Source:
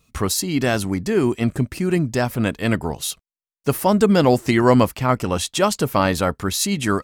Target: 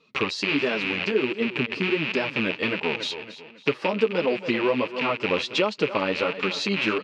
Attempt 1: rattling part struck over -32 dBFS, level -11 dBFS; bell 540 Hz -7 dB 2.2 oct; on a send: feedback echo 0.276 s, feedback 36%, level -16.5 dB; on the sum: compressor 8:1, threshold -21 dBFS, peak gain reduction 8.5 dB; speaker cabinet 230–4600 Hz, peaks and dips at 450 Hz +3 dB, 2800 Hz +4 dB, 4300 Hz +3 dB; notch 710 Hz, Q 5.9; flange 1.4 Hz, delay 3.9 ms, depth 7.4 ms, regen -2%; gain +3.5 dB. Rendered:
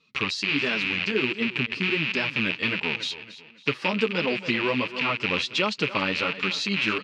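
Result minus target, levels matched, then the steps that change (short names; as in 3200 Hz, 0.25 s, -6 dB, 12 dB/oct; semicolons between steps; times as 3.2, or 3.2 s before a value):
500 Hz band -5.0 dB
change: bell 540 Hz +4.5 dB 2.2 oct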